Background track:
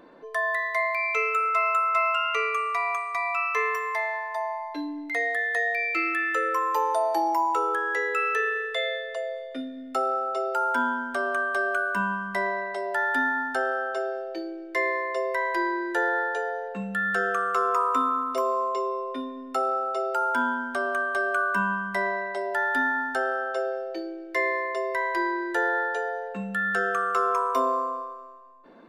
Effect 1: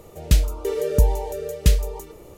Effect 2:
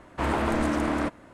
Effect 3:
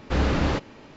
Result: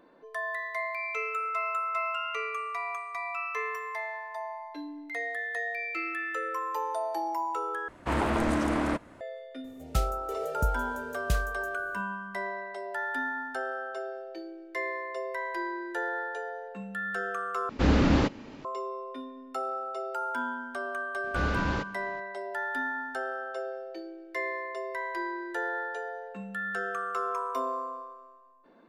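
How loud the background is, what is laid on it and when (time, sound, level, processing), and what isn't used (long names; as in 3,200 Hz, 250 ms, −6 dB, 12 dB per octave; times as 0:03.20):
background track −7.5 dB
0:07.88: overwrite with 2 −1.5 dB
0:09.64: mix in 1 −12 dB
0:17.69: overwrite with 3 −1.5 dB + parametric band 250 Hz +7 dB 0.68 octaves
0:21.24: mix in 3 −7.5 dB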